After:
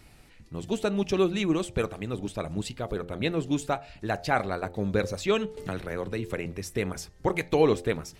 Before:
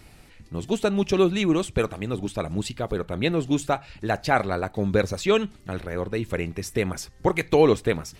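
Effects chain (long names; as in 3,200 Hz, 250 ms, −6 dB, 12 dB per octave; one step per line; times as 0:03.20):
hum removal 87.56 Hz, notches 10
0:05.57–0:06.46: multiband upward and downward compressor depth 70%
level −4 dB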